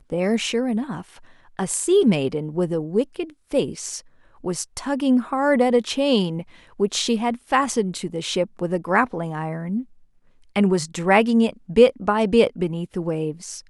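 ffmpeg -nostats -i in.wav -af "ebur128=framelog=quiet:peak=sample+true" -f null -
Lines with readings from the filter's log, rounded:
Integrated loudness:
  I:         -21.8 LUFS
  Threshold: -32.2 LUFS
Loudness range:
  LRA:         4.5 LU
  Threshold: -42.3 LUFS
  LRA low:   -24.5 LUFS
  LRA high:  -20.0 LUFS
Sample peak:
  Peak:       -2.5 dBFS
True peak:
  Peak:       -2.5 dBFS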